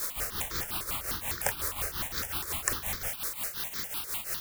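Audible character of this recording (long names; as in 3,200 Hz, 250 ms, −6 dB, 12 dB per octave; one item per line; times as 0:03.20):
a quantiser's noise floor 6 bits, dither triangular
tremolo triangle 5.6 Hz, depth 80%
notches that jump at a steady rate 9.9 Hz 770–2,800 Hz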